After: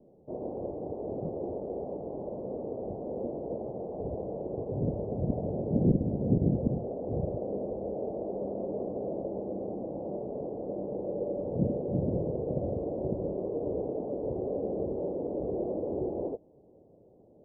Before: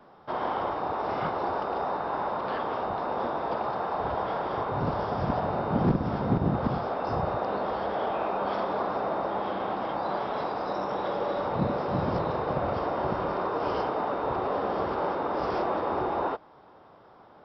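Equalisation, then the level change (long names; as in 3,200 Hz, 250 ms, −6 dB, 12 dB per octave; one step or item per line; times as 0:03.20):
Butterworth low-pass 560 Hz 36 dB per octave
0.0 dB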